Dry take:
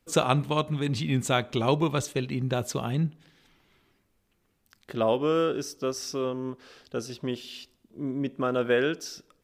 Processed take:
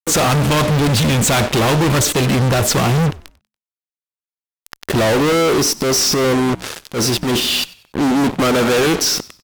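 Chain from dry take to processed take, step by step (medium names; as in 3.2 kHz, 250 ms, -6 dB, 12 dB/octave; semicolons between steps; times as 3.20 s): fuzz box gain 48 dB, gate -47 dBFS; wow and flutter 20 cents; 5.80–7.40 s: transient shaper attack -9 dB, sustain +5 dB; frequency-shifting echo 95 ms, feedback 34%, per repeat -72 Hz, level -21 dB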